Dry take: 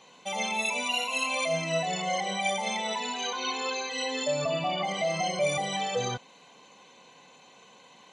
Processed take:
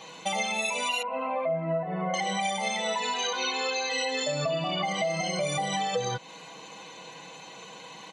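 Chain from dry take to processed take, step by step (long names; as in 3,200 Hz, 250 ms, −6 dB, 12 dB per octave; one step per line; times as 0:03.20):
0:01.02–0:02.14: low-pass filter 1,500 Hz 24 dB per octave
comb filter 6.2 ms, depth 55%
downward compressor, threshold −35 dBFS, peak gain reduction 13 dB
level +8.5 dB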